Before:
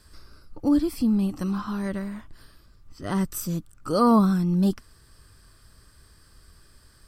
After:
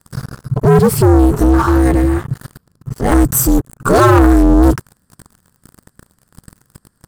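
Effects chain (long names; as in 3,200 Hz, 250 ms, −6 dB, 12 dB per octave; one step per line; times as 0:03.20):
leveller curve on the samples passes 5
ring modulation 130 Hz
flat-topped bell 3,400 Hz −8.5 dB
level +6 dB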